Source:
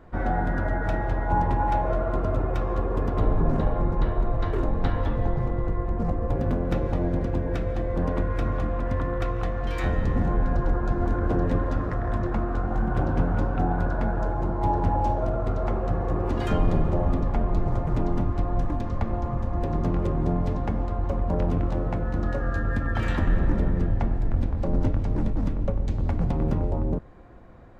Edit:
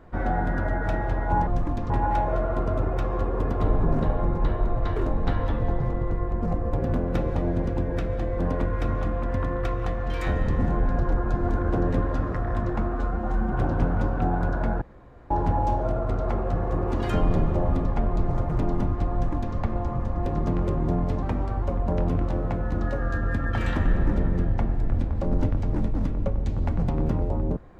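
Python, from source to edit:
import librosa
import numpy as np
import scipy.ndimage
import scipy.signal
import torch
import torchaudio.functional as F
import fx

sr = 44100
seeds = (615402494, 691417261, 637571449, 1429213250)

y = fx.edit(x, sr, fx.stretch_span(start_s=12.51, length_s=0.39, factor=1.5),
    fx.room_tone_fill(start_s=14.19, length_s=0.49),
    fx.duplicate(start_s=18.5, length_s=0.43, to_s=1.47),
    fx.speed_span(start_s=20.6, length_s=0.44, speed=1.11), tone=tone)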